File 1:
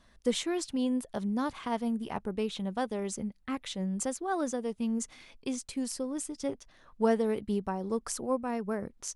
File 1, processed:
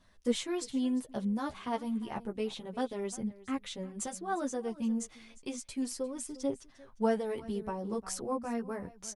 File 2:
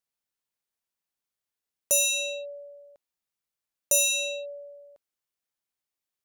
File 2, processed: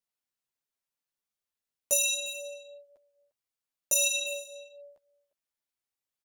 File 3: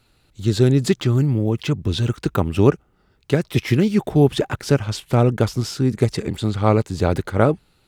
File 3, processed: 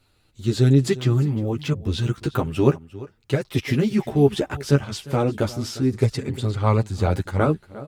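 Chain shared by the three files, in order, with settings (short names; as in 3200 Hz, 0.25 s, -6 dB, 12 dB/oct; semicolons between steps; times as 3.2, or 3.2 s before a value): echo 0.352 s -18.5 dB; chorus voices 2, 0.31 Hz, delay 11 ms, depth 3.7 ms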